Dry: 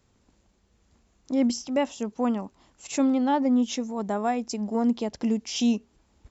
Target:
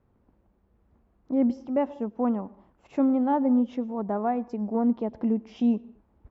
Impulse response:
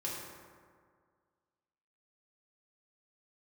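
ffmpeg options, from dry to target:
-filter_complex "[0:a]lowpass=1.2k,asplit=2[a][b];[1:a]atrim=start_sample=2205,atrim=end_sample=6174,adelay=99[c];[b][c]afir=irnorm=-1:irlink=0,volume=-22dB[d];[a][d]amix=inputs=2:normalize=0"

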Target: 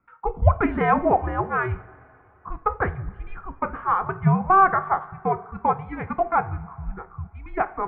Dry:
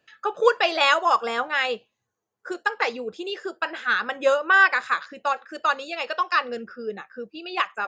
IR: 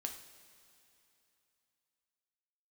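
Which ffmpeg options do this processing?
-filter_complex "[0:a]asplit=2[a][b];[1:a]atrim=start_sample=2205[c];[b][c]afir=irnorm=-1:irlink=0,volume=-3dB[d];[a][d]amix=inputs=2:normalize=0,highpass=f=160:t=q:w=0.5412,highpass=f=160:t=q:w=1.307,lowpass=f=2.1k:t=q:w=0.5176,lowpass=f=2.1k:t=q:w=0.7071,lowpass=f=2.1k:t=q:w=1.932,afreqshift=-390,volume=-2.5dB"

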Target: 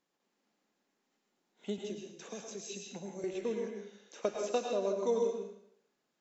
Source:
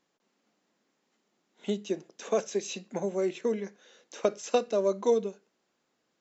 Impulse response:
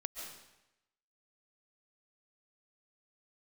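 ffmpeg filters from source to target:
-filter_complex "[0:a]asettb=1/sr,asplit=3[a][b][c];[a]atrim=end=1.784[d];[b]atrim=start=1.78:end=3.24,asetpts=PTS-STARTPTS,afade=t=in:d=0.004:c=qsin,afade=t=out:st=1.456:d=0.004:c=qsin,acrossover=split=260|3000[e][f][g];[f]acompressor=threshold=-41dB:ratio=6[h];[e][h][g]amix=inputs=3:normalize=0[i];[c]atrim=start=3.236[j];[d][i]acrossfade=d=0.004:c1=hsin:c2=qsin[k];[k][j]acrossfade=d=0.004:c1=qsin:c2=hsin[l];[1:a]atrim=start_sample=2205,asetrate=57330,aresample=44100[m];[l][m]afir=irnorm=-1:irlink=0,volume=-1.5dB"

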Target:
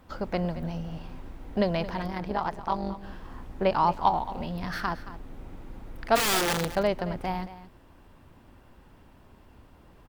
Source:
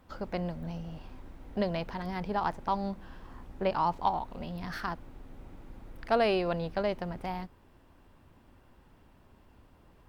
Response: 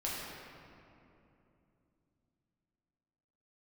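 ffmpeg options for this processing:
-filter_complex "[0:a]asettb=1/sr,asplit=3[a][b][c];[a]atrim=end=2.074[d];[b]atrim=start=2.07:end=3.04,asetpts=PTS-STARTPTS,afade=t=in:d=0.004:c=qsin,afade=t=out:st=0.966:d=0.004:c=qsin,tremolo=f=150:d=0.788[e];[c]atrim=start=3.036[f];[d][e]acrossfade=d=0.004:c1=hsin:c2=qsin[g];[g][f]acrossfade=d=0.004:c1=qsin:c2=hsin,asplit=3[h][i][j];[h]afade=t=out:st=6.15:d=0.02[k];[i]aeval=exprs='(mod(18.8*val(0)+1,2)-1)/18.8':c=same,afade=t=in:st=6.15:d=0.02,afade=t=out:st=6.66:d=0.02[l];[j]afade=t=in:st=6.66:d=0.02[m];[k][l][m]amix=inputs=3:normalize=0,aecho=1:1:223:0.178,volume=5dB"

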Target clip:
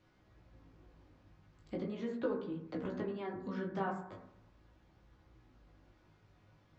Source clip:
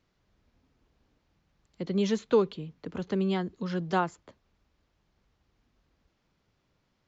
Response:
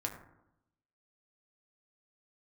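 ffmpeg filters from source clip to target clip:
-filter_complex "[0:a]acrossover=split=2900[a][b];[b]acompressor=threshold=-52dB:ratio=4:attack=1:release=60[c];[a][c]amix=inputs=2:normalize=0,highshelf=f=5.3k:g=-11,acompressor=threshold=-45dB:ratio=3,flanger=delay=15.5:depth=6:speed=0.38[d];[1:a]atrim=start_sample=2205[e];[d][e]afir=irnorm=-1:irlink=0,asetrate=45938,aresample=44100,volume=8dB"

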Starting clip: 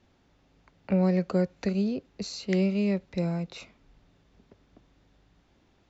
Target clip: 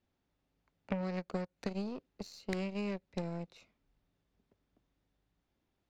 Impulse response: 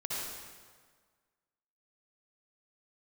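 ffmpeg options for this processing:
-af "aeval=exprs='0.211*(cos(1*acos(clip(val(0)/0.211,-1,1)))-cos(1*PI/2))+0.0531*(cos(2*acos(clip(val(0)/0.211,-1,1)))-cos(2*PI/2))+0.0473*(cos(3*acos(clip(val(0)/0.211,-1,1)))-cos(3*PI/2))+0.0075*(cos(7*acos(clip(val(0)/0.211,-1,1)))-cos(7*PI/2))+0.00473*(cos(8*acos(clip(val(0)/0.211,-1,1)))-cos(8*PI/2))':c=same,acompressor=threshold=-37dB:ratio=10,volume=5dB"

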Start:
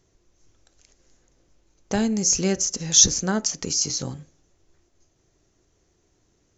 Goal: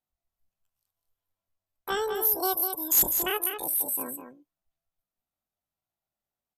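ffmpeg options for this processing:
-filter_complex "[0:a]afftdn=nr=22:nf=-34,lowshelf=f=430:g=-9.5,bandreject=f=5.5k:w=8.1,aresample=16000,asoftclip=type=tanh:threshold=-14.5dB,aresample=44100,asetrate=85689,aresample=44100,atempo=0.514651,asplit=2[a][b];[b]aecho=0:1:201:0.422[c];[a][c]amix=inputs=2:normalize=0"

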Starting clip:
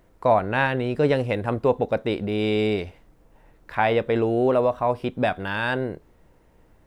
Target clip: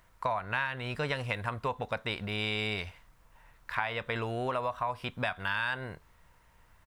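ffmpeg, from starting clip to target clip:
-af "firequalizer=gain_entry='entry(100,0);entry(320,-12);entry(970,7)':delay=0.05:min_phase=1,acompressor=threshold=-23dB:ratio=5,bandreject=f=810:w=13,volume=-5dB"

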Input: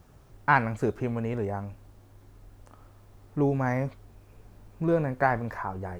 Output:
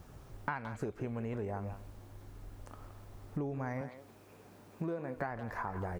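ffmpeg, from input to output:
-filter_complex "[0:a]asettb=1/sr,asplit=3[a][b][c];[a]atrim=end=3.814[d];[b]atrim=start=3.81:end=5.16,asetpts=PTS-STARTPTS,afade=t=in:d=0.004:c=qsin,afade=t=out:st=1.346:d=0.004:c=qsin,highpass=180[e];[c]atrim=start=5.156[f];[d][e]acrossfade=d=0.004:c1=hsin:c2=qsin[g];[g][f]acrossfade=d=0.004:c1=qsin:c2=hsin,acompressor=threshold=-36dB:ratio=16,asplit=2[h][i];[i]adelay=170,highpass=300,lowpass=3.4k,asoftclip=type=hard:threshold=-30.5dB,volume=-10dB[j];[h][j]amix=inputs=2:normalize=0,volume=2dB"

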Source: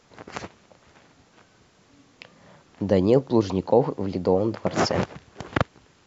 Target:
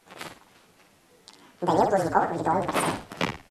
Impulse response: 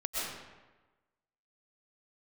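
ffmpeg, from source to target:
-filter_complex "[0:a]flanger=delay=17.5:depth=3.1:speed=1.3,asplit=5[a][b][c][d][e];[b]adelay=94,afreqshift=-30,volume=-6dB[f];[c]adelay=188,afreqshift=-60,volume=-15.4dB[g];[d]adelay=282,afreqshift=-90,volume=-24.7dB[h];[e]adelay=376,afreqshift=-120,volume=-34.1dB[i];[a][f][g][h][i]amix=inputs=5:normalize=0,asetrate=76440,aresample=44100"

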